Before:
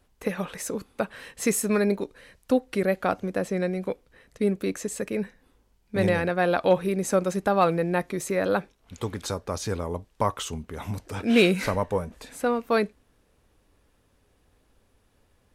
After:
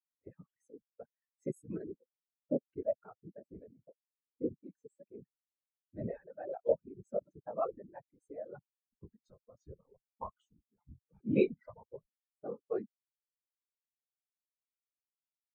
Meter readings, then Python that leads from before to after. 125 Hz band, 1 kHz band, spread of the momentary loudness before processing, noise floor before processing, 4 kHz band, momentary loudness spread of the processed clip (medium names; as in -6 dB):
-17.5 dB, -19.5 dB, 12 LU, -66 dBFS, under -30 dB, 22 LU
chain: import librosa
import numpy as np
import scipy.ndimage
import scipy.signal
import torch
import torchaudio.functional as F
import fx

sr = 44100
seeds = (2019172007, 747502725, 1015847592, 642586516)

y = fx.whisperise(x, sr, seeds[0])
y = fx.dereverb_blind(y, sr, rt60_s=1.5)
y = fx.spectral_expand(y, sr, expansion=2.5)
y = y * 10.0 ** (-8.5 / 20.0)